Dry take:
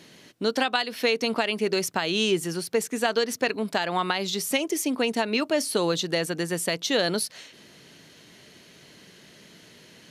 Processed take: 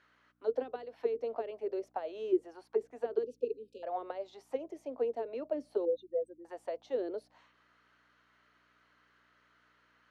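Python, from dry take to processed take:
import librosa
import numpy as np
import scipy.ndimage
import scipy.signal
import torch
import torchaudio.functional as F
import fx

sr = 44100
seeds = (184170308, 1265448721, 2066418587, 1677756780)

y = fx.spec_expand(x, sr, power=3.9, at=(5.85, 6.45))
y = scipy.signal.sosfilt(scipy.signal.ellip(4, 1.0, 40, 240.0, 'highpass', fs=sr, output='sos'), y)
y = fx.add_hum(y, sr, base_hz=60, snr_db=14)
y = fx.auto_wah(y, sr, base_hz=370.0, top_hz=1500.0, q=5.1, full_db=-19.5, direction='down')
y = fx.brickwall_bandstop(y, sr, low_hz=540.0, high_hz=2400.0, at=(3.23, 3.83))
y = y * 10.0 ** (-1.5 / 20.0)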